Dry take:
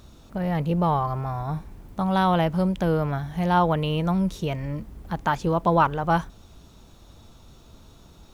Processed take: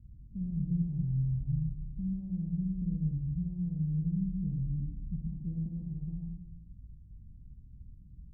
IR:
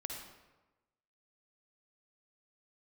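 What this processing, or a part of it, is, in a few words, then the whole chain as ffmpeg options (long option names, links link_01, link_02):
club heard from the street: -filter_complex "[0:a]alimiter=limit=-19dB:level=0:latency=1:release=401,lowpass=frequency=180:width=0.5412,lowpass=frequency=180:width=1.3066[link_01];[1:a]atrim=start_sample=2205[link_02];[link_01][link_02]afir=irnorm=-1:irlink=0"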